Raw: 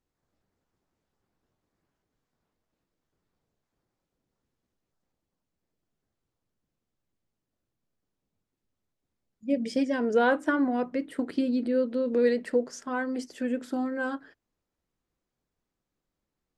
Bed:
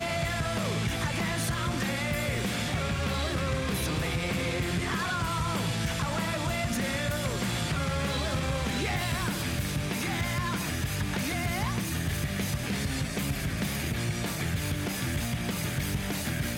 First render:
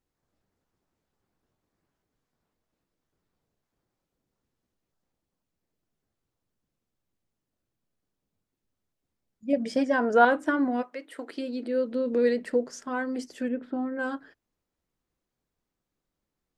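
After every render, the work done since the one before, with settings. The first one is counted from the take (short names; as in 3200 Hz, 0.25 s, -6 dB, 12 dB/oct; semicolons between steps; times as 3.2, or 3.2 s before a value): 9.53–10.25 band shelf 1000 Hz +9 dB; 10.81–11.87 HPF 770 Hz -> 250 Hz; 13.48–13.99 air absorption 450 m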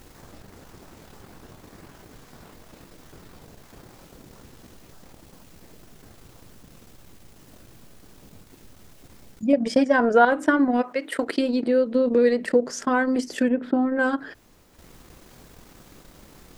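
transient shaper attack +5 dB, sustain -12 dB; fast leveller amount 50%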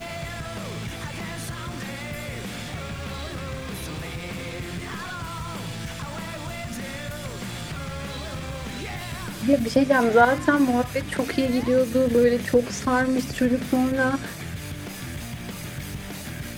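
add bed -3.5 dB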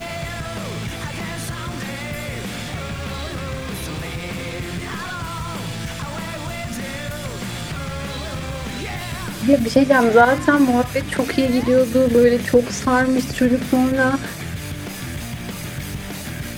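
gain +5 dB; limiter -1 dBFS, peak gain reduction 2.5 dB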